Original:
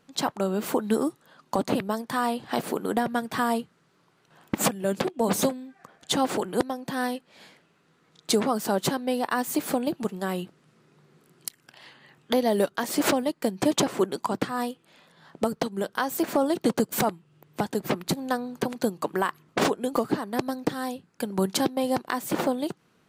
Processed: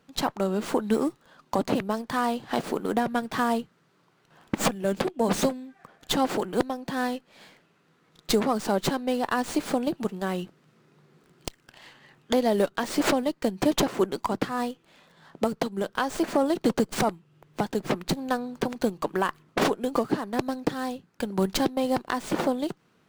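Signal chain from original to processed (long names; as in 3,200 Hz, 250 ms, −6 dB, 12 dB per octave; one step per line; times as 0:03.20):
windowed peak hold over 3 samples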